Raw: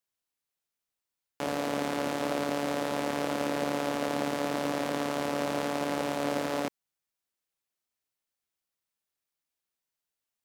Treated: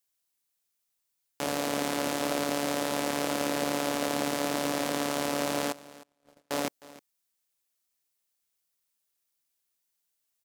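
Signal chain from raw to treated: treble shelf 4 kHz +10 dB; 5.72–6.51 s: gate -23 dBFS, range -47 dB; delay 310 ms -19.5 dB

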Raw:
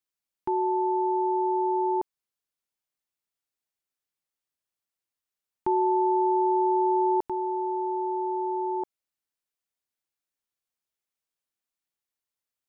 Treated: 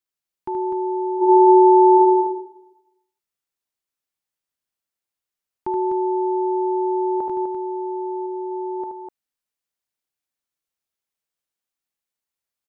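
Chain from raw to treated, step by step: 1.16–1.92 s: reverb throw, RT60 0.89 s, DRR -12 dB; 8.26–8.80 s: distance through air 160 m; loudspeakers at several distances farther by 26 m -6 dB, 86 m -6 dB

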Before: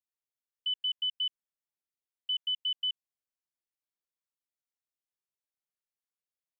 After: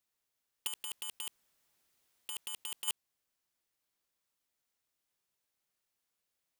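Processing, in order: integer overflow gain 35.5 dB; 0.67–2.88 s: compressor with a negative ratio -50 dBFS, ratio -1; trim +9.5 dB

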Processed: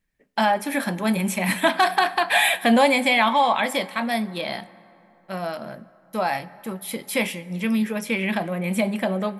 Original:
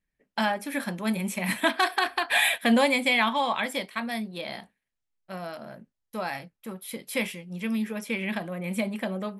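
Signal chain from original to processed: dynamic bell 760 Hz, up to +6 dB, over -39 dBFS, Q 2.1; in parallel at +0.5 dB: peak limiter -21 dBFS, peak gain reduction 12.5 dB; on the sum: reverberation RT60 3.4 s, pre-delay 4 ms, DRR 17.5 dB

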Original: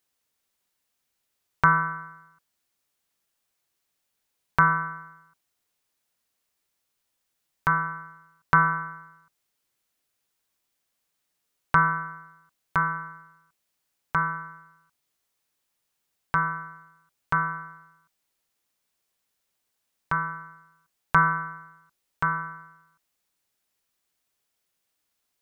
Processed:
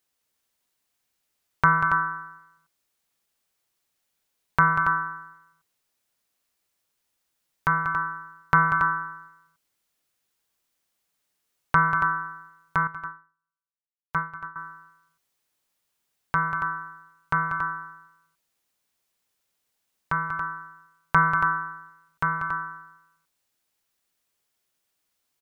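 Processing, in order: on a send: loudspeakers at several distances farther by 65 m -9 dB, 96 m -8 dB; 12.87–14.56 s: on the sum: upward expansion 2.5:1, over -45 dBFS

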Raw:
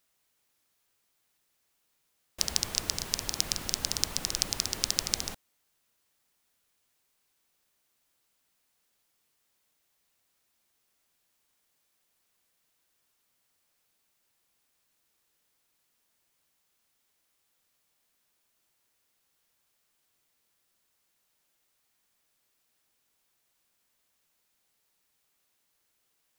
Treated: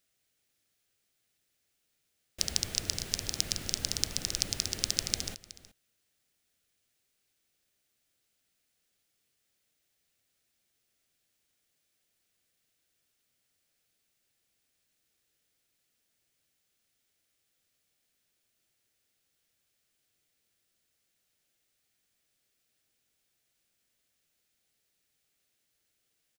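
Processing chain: fifteen-band graphic EQ 100 Hz +4 dB, 1 kHz -11 dB, 16 kHz -5 dB; on a send: delay 370 ms -18 dB; on the sum: trim -1 dB

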